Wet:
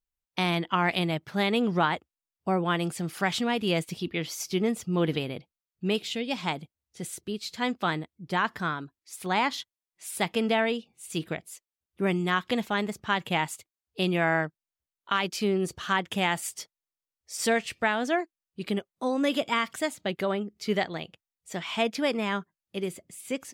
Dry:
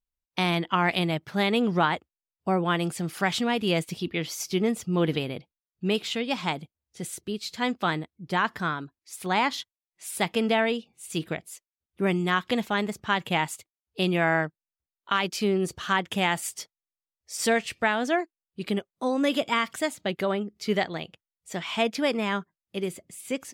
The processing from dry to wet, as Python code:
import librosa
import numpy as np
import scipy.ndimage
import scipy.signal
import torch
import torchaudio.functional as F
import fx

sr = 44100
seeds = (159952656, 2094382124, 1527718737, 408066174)

y = fx.peak_eq(x, sr, hz=1200.0, db=fx.line((5.99, -13.0), (6.43, -4.0)), octaves=1.0, at=(5.99, 6.43), fade=0.02)
y = y * 10.0 ** (-1.5 / 20.0)